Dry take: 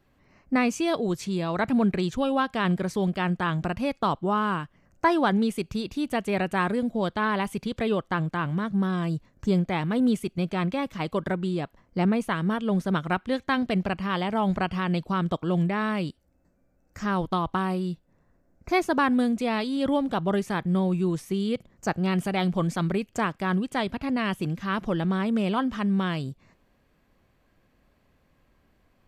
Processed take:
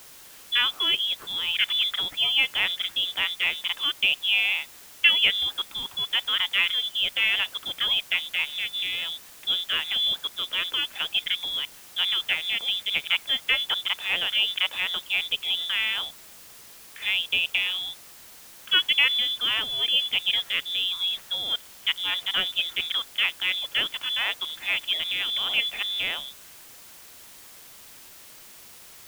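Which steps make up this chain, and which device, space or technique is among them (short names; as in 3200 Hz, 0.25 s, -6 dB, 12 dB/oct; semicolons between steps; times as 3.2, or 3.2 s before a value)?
scrambled radio voice (BPF 360–2900 Hz; inverted band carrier 3700 Hz; white noise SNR 20 dB); gain +3.5 dB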